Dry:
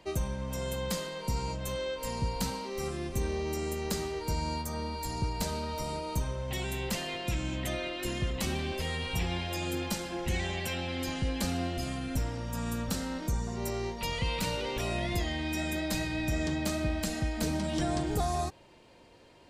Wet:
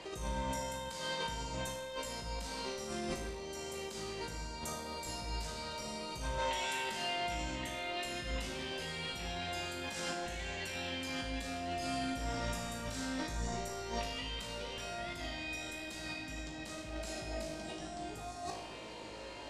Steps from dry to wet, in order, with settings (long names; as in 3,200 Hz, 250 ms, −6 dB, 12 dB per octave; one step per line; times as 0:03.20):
0:06.38–0:06.90: meter weighting curve A
0:16.92–0:17.85: healed spectral selection 330–860 Hz both
Chebyshev low-pass filter 8,600 Hz, order 2
low-shelf EQ 200 Hz −10 dB
compressor whose output falls as the input rises −45 dBFS, ratio −1
tuned comb filter 54 Hz, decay 0.83 s, harmonics all, mix 90%
feedback echo with a low-pass in the loop 1,058 ms, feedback 80%, low-pass 4,800 Hz, level −17 dB
convolution reverb RT60 0.95 s, pre-delay 46 ms, DRR 12 dB
level +15 dB